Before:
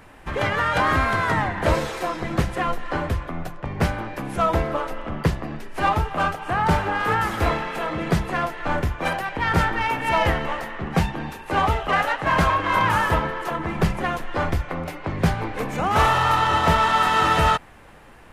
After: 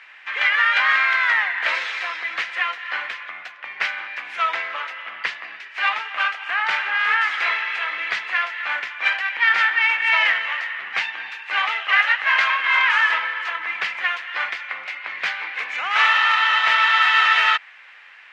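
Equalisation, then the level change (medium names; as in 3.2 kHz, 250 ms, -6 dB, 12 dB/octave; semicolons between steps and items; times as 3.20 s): resonant high-pass 2.1 kHz, resonance Q 2; distance through air 190 m; +7.5 dB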